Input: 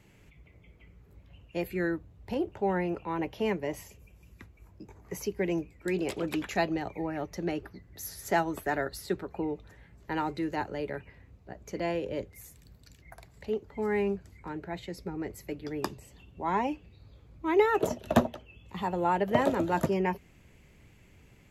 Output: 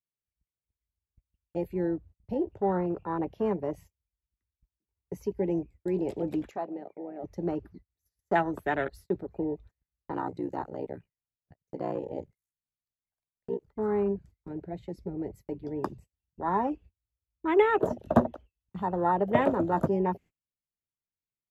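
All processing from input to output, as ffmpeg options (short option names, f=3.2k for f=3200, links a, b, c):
-filter_complex "[0:a]asettb=1/sr,asplit=3[a][b][c];[a]atrim=end=6.514[d];[b]atrim=start=6.51:end=7.24,asetpts=PTS-STARTPTS,afade=t=in:d=0.004:c=qsin,afade=t=out:st=0.726:d=0.004:c=qsin,bandpass=f=890:t=q:w=0.55,acompressor=threshold=-39dB:ratio=1.5:attack=3.2:release=140:knee=1:detection=peak[e];[c]atrim=start=7.236[f];[d][e]acrossfade=d=0.004:c1=hsin:c2=qsin[g];[g][f]acrossfade=d=0.004:c1=qsin:c2=hsin,asettb=1/sr,asplit=3[h][i][j];[h]atrim=end=10.114[k];[i]atrim=start=10.11:end=13.7,asetpts=PTS-STARTPTS,afade=t=in:d=0.004:c=qsin,afade=t=out:st=3.586:d=0.004:c=qsin,equalizer=f=9k:t=o:w=1.1:g=6,aeval=exprs='val(0)*sin(2*PI*31*n/s)':c=same[l];[j]atrim=start=13.696[m];[k][l]acrossfade=d=0.004:c1=hsin:c2=qsin[n];[n][m]acrossfade=d=0.004:c1=qsin:c2=hsin,afwtdn=0.02,agate=range=-31dB:threshold=-49dB:ratio=16:detection=peak,equalizer=f=63:w=2.1:g=-3.5,volume=1.5dB"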